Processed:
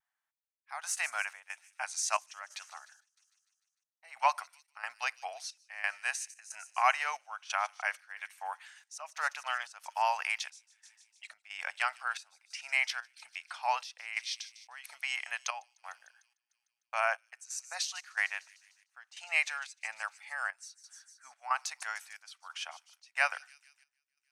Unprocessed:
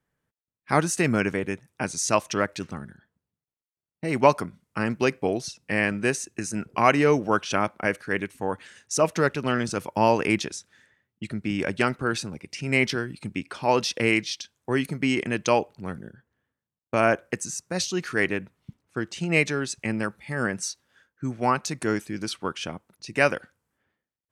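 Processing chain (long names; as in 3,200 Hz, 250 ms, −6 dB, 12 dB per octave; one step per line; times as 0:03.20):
elliptic high-pass filter 740 Hz, stop band 50 dB
on a send: delay with a high-pass on its return 151 ms, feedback 61%, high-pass 4,900 Hz, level −11.5 dB
on the sum: gate pattern "xxx..xxx.x" 90 BPM −12 dB
pitch vibrato 0.33 Hz 13 cents
level −5 dB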